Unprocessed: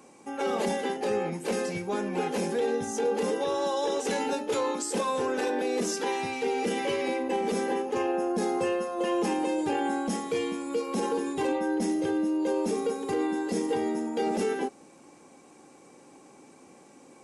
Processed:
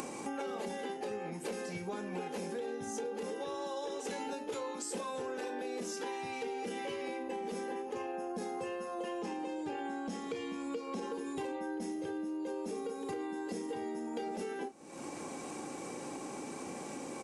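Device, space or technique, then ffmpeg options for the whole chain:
upward and downward compression: -filter_complex "[0:a]asettb=1/sr,asplit=3[s0][s1][s2];[s0]atrim=end=9.214[s3];[s1]atrim=start=9.21:end=11.13,asetpts=PTS-STARTPTS,afade=t=in:d=0.004:c=qsin,afade=t=out:st=1.916:d=0.004:c=qsin,lowpass=7100[s4];[s2]atrim=start=11.126[s5];[s3][s4]acrossfade=d=0.004:c1=hsin:c2=qsin[s6];[s6][s5]acrossfade=d=0.004:c1=qsin:c2=hsin,asplit=2[s7][s8];[s8]adelay=33,volume=0.266[s9];[s7][s9]amix=inputs=2:normalize=0,acompressor=mode=upward:threshold=0.0112:ratio=2.5,acompressor=threshold=0.00794:ratio=8,volume=1.78"

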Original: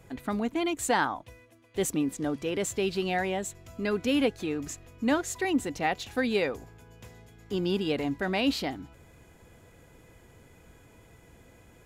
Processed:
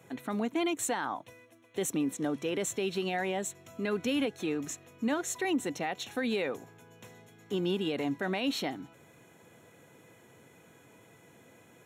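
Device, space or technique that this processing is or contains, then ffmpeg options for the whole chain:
PA system with an anti-feedback notch: -filter_complex "[0:a]highpass=f=110:w=0.5412,highpass=f=110:w=1.3066,asettb=1/sr,asplit=3[s0][s1][s2];[s0]atrim=end=3.784[s3];[s1]atrim=start=3.78:end=4.26,asetpts=PTS-STARTPTS,afade=t=in:d=0.004:c=qsin,afade=t=out:st=0.476:d=0.004:c=qsin,asubboost=boost=10.5:cutoff=190[s4];[s2]atrim=start=4.256[s5];[s3][s4]acrossfade=d=0.004:c1=hsin:c2=qsin[s6];[s6][s5]acrossfade=d=0.004:c1=qsin:c2=hsin,highpass=f=130:p=1,asuperstop=centerf=4800:order=12:qfactor=6.7,alimiter=limit=0.0794:level=0:latency=1:release=92"

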